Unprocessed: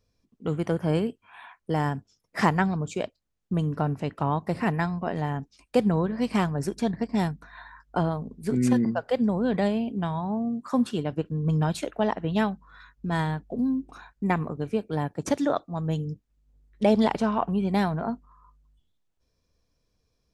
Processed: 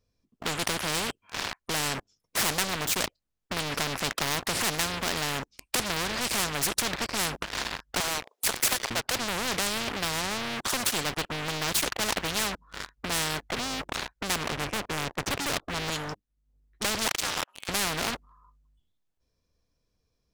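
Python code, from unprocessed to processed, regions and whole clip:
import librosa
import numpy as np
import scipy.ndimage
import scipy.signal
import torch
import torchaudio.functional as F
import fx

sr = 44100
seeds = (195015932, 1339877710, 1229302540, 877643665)

y = fx.chain(x, sr, fx.steep_highpass(hz=640.0, slope=36),
    fx.transient(attack_db=10, sustain_db=5), at=(8.0, 8.91))
y = fx.chain(y, sr, fx.lowpass(hz=3000.0, slope=6),
    fx.tilt_eq(slope=-4.0), at=(14.52, 15.9))
y = fx.chain(y, sr, fx.highpass(hz=1200.0, slope=24),
    fx.ring_mod(carrier_hz=150.0), at=(17.08, 17.69))
y = fx.rider(y, sr, range_db=10, speed_s=2.0)
y = fx.leveller(y, sr, passes=5)
y = fx.spectral_comp(y, sr, ratio=4.0)
y = y * librosa.db_to_amplitude(-3.5)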